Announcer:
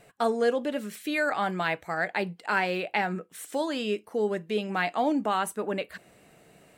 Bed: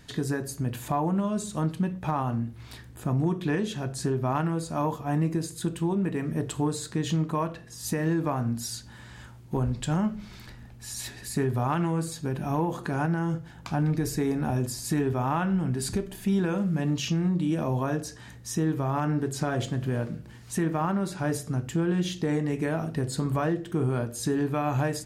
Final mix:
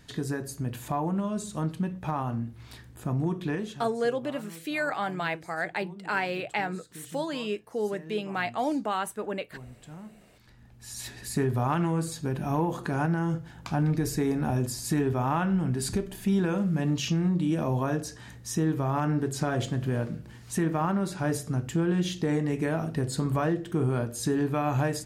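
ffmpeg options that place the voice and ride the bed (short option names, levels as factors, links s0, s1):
-filter_complex "[0:a]adelay=3600,volume=0.75[s0];[1:a]volume=6.31,afade=t=out:st=3.45:d=0.52:silence=0.158489,afade=t=in:st=10.34:d=0.95:silence=0.11885[s1];[s0][s1]amix=inputs=2:normalize=0"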